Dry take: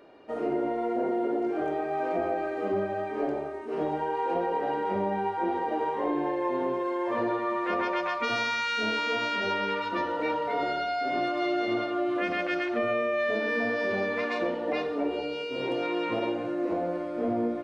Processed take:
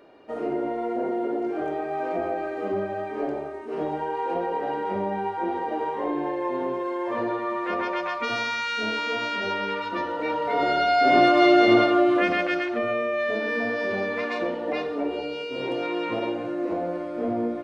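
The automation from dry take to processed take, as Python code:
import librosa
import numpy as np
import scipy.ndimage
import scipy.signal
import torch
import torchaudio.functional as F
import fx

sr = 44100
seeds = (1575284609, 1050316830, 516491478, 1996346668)

y = fx.gain(x, sr, db=fx.line((10.24, 1.0), (11.1, 11.5), (11.81, 11.5), (12.74, 1.5)))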